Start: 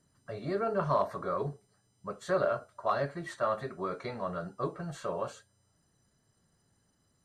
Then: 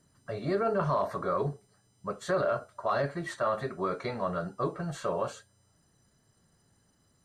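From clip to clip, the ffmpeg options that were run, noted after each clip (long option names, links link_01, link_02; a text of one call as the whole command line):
ffmpeg -i in.wav -af "alimiter=limit=-23.5dB:level=0:latency=1:release=25,volume=4dB" out.wav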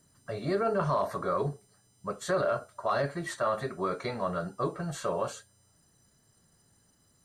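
ffmpeg -i in.wav -af "highshelf=frequency=6300:gain=8.5" out.wav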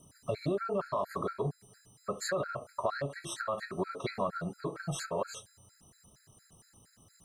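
ffmpeg -i in.wav -af "acompressor=threshold=-36dB:ratio=6,afftfilt=real='re*gt(sin(2*PI*4.3*pts/sr)*(1-2*mod(floor(b*sr/1024/1300),2)),0)':imag='im*gt(sin(2*PI*4.3*pts/sr)*(1-2*mod(floor(b*sr/1024/1300),2)),0)':win_size=1024:overlap=0.75,volume=7.5dB" out.wav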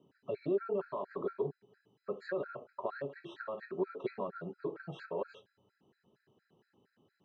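ffmpeg -i in.wav -af "highpass=220,equalizer=frequency=390:width_type=q:width=4:gain=6,equalizer=frequency=670:width_type=q:width=4:gain=-6,equalizer=frequency=1200:width_type=q:width=4:gain=-10,equalizer=frequency=2100:width_type=q:width=4:gain=-9,lowpass=frequency=2800:width=0.5412,lowpass=frequency=2800:width=1.3066,volume=-2.5dB" out.wav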